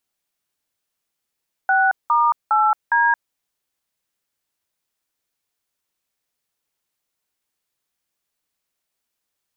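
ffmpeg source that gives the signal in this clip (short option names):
-f lavfi -i "aevalsrc='0.158*clip(min(mod(t,0.409),0.223-mod(t,0.409))/0.002,0,1)*(eq(floor(t/0.409),0)*(sin(2*PI*770*mod(t,0.409))+sin(2*PI*1477*mod(t,0.409)))+eq(floor(t/0.409),1)*(sin(2*PI*941*mod(t,0.409))+sin(2*PI*1209*mod(t,0.409)))+eq(floor(t/0.409),2)*(sin(2*PI*852*mod(t,0.409))+sin(2*PI*1336*mod(t,0.409)))+eq(floor(t/0.409),3)*(sin(2*PI*941*mod(t,0.409))+sin(2*PI*1633*mod(t,0.409))))':d=1.636:s=44100"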